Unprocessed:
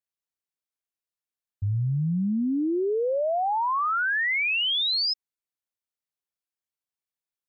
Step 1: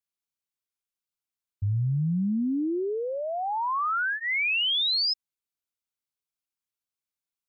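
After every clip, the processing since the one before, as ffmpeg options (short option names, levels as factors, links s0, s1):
-af "equalizer=f=580:w=1.1:g=-6,bandreject=f=1800:w=6.6"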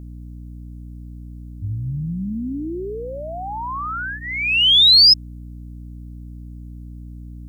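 -af "aexciter=amount=5.9:drive=5.3:freq=2900,aeval=exprs='val(0)+0.02*(sin(2*PI*60*n/s)+sin(2*PI*2*60*n/s)/2+sin(2*PI*3*60*n/s)/3+sin(2*PI*4*60*n/s)/4+sin(2*PI*5*60*n/s)/5)':c=same"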